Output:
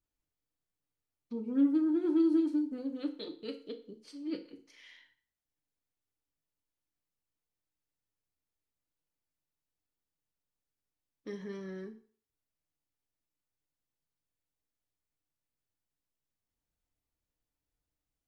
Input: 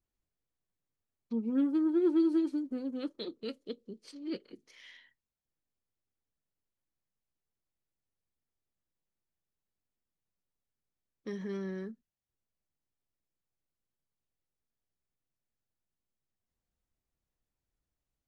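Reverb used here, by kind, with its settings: FDN reverb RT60 0.46 s, low-frequency decay 0.8×, high-frequency decay 0.95×, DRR 4 dB; gain -3 dB

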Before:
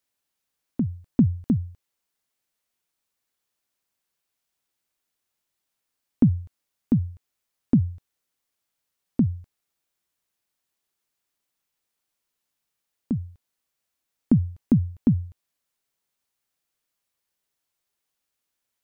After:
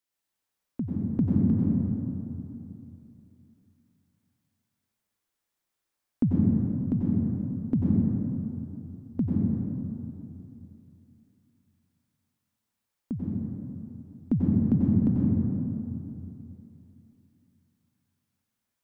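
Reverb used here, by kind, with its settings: plate-style reverb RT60 3 s, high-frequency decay 0.35×, pre-delay 80 ms, DRR -5.5 dB; gain -7 dB

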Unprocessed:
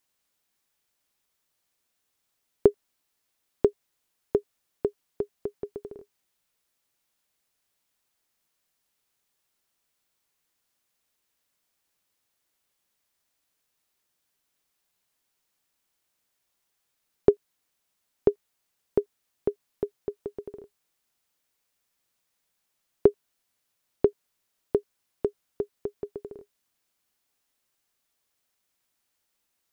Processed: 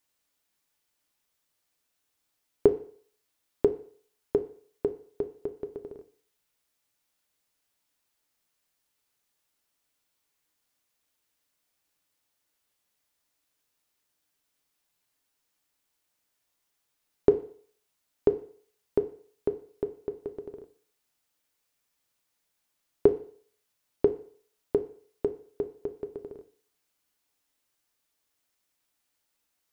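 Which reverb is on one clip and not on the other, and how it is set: FDN reverb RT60 0.52 s, low-frequency decay 0.8×, high-frequency decay 1×, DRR 7.5 dB; gain -1.5 dB

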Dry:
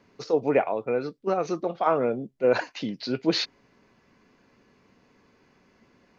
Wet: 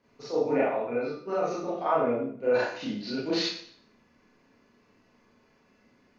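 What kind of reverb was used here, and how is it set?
Schroeder reverb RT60 0.57 s, combs from 26 ms, DRR -8 dB; gain -11 dB

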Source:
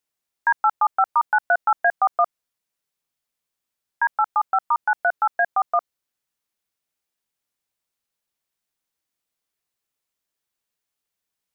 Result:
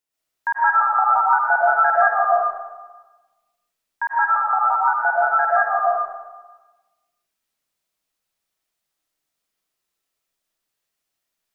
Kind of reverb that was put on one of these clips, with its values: digital reverb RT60 1.2 s, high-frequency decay 0.9×, pre-delay 75 ms, DRR -7.5 dB; gain -3.5 dB

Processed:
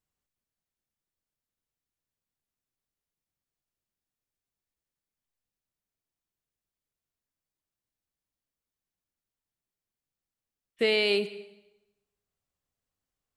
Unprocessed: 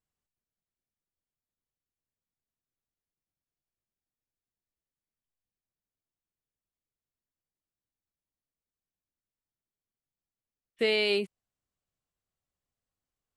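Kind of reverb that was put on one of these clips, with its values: plate-style reverb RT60 1 s, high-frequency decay 0.85×, pre-delay 95 ms, DRR 16 dB; gain +1.5 dB

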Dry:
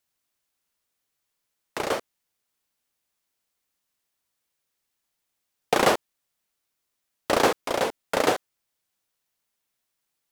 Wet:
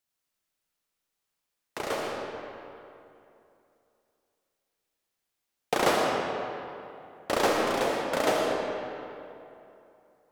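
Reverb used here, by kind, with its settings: digital reverb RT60 2.8 s, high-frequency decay 0.65×, pre-delay 40 ms, DRR -1.5 dB; gain -5.5 dB

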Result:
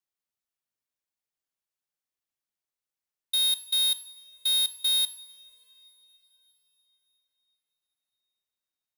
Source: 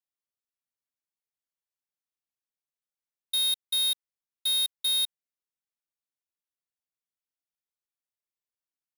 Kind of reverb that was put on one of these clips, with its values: two-slope reverb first 0.51 s, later 4.3 s, from -19 dB, DRR 10.5 dB; gain +1 dB

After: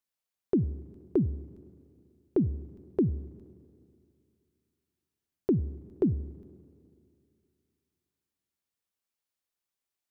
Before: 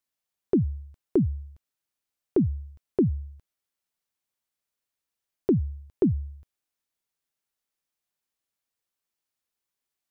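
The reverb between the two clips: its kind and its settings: Schroeder reverb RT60 2.5 s, combs from 32 ms, DRR 17.5 dB; gain -3.5 dB

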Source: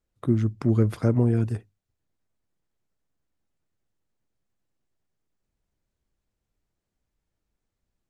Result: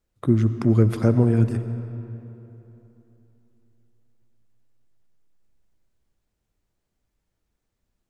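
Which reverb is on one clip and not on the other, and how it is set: digital reverb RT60 3.3 s, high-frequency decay 0.65×, pre-delay 45 ms, DRR 10.5 dB; gain +3.5 dB

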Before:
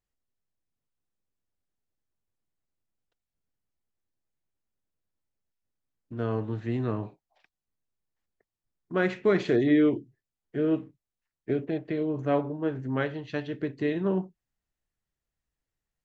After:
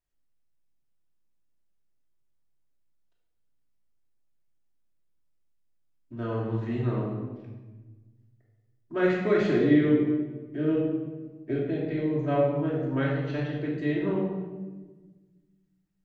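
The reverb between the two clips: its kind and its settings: shoebox room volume 930 m³, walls mixed, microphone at 2.8 m; gain -5.5 dB

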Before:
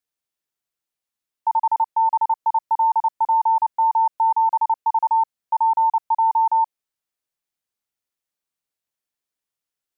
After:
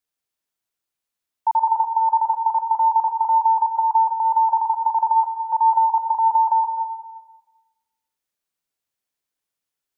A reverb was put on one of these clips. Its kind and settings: plate-style reverb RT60 1.2 s, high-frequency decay 0.85×, pre-delay 0.115 s, DRR 6 dB; gain +1 dB

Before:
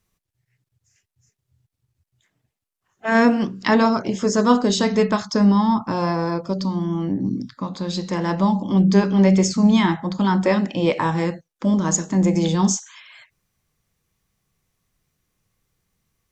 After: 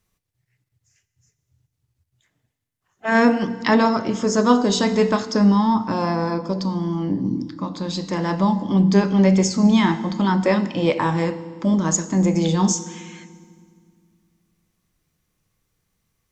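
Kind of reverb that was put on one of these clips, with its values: FDN reverb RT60 1.9 s, low-frequency decay 1.55×, high-frequency decay 0.9×, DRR 13 dB

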